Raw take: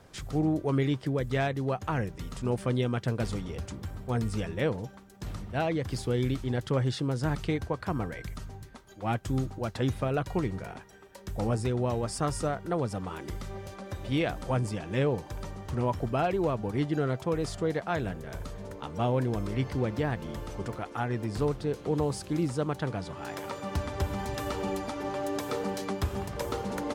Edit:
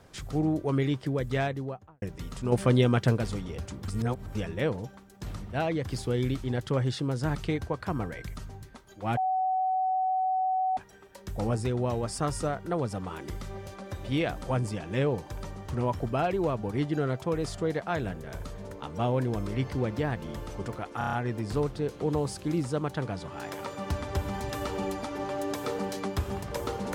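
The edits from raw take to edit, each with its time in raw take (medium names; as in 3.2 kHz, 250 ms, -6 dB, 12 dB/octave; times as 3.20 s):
1.38–2.02 s: studio fade out
2.52–3.18 s: gain +6 dB
3.88–4.35 s: reverse
9.17–10.77 s: bleep 751 Hz -24 dBFS
20.98 s: stutter 0.03 s, 6 plays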